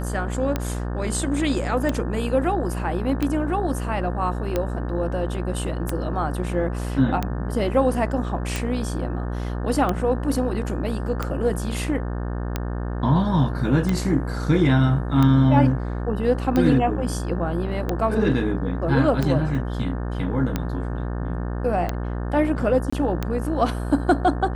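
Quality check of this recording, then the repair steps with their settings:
buzz 60 Hz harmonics 30 -27 dBFS
tick 45 rpm -10 dBFS
19.55 gap 2.9 ms
22.9–22.93 gap 25 ms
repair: de-click; de-hum 60 Hz, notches 30; interpolate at 19.55, 2.9 ms; interpolate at 22.9, 25 ms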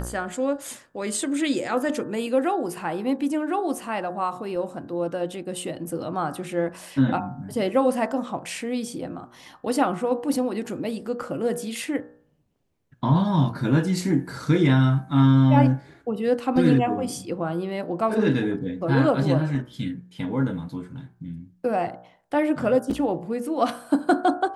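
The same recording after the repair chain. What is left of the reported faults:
none

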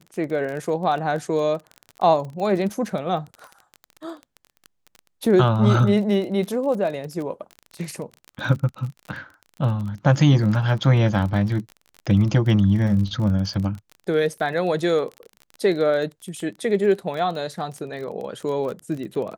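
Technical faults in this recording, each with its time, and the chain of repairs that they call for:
crackle 28/s -29 dBFS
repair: de-click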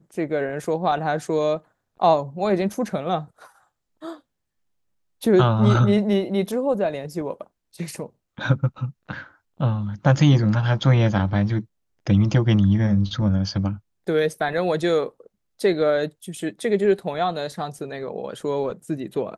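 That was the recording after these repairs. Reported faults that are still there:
none

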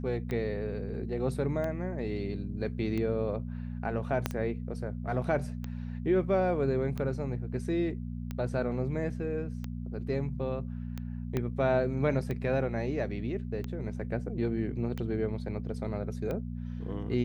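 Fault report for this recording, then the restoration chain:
hum 60 Hz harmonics 4 -37 dBFS
tick 45 rpm -23 dBFS
4.26 pop -13 dBFS
11.37 pop -18 dBFS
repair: de-click; de-hum 60 Hz, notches 4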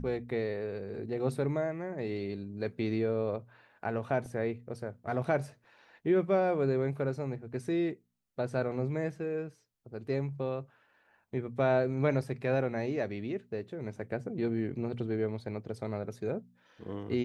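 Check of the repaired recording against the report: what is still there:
4.26 pop
11.37 pop

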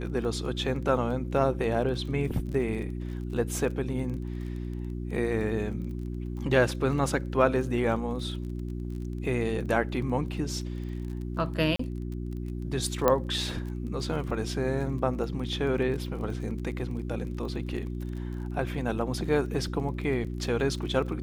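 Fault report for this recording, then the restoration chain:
crackle 26/s -37 dBFS
hum 60 Hz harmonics 6 -34 dBFS
11.76–11.79 gap 34 ms
13.08 pop -9 dBFS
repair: de-click; de-hum 60 Hz, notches 6; interpolate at 11.76, 34 ms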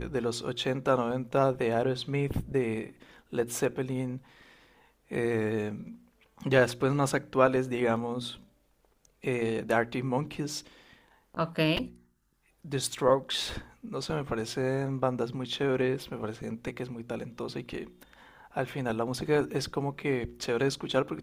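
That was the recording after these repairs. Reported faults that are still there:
none

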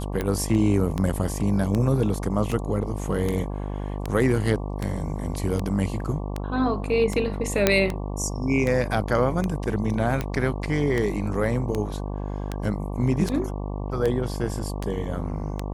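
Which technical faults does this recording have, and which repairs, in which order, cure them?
buzz 50 Hz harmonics 23 -30 dBFS
tick 78 rpm -13 dBFS
7.67 pop -2 dBFS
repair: de-click; de-hum 50 Hz, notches 23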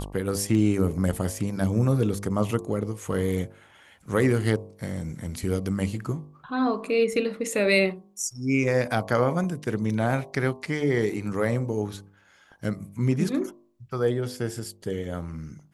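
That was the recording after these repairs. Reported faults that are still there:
none

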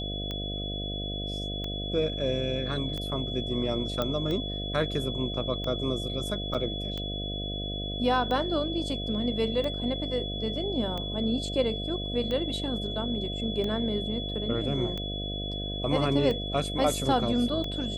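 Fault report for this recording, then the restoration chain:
buzz 50 Hz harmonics 14 -35 dBFS
tick 45 rpm -21 dBFS
tone 3400 Hz -35 dBFS
4.02 pop -15 dBFS
6.54–6.55 gap 6.8 ms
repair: de-click; notch 3400 Hz, Q 30; de-hum 50 Hz, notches 14; interpolate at 6.54, 6.8 ms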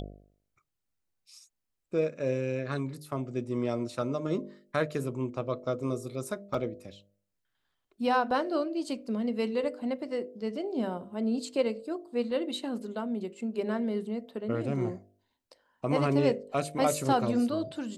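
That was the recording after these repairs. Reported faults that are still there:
none

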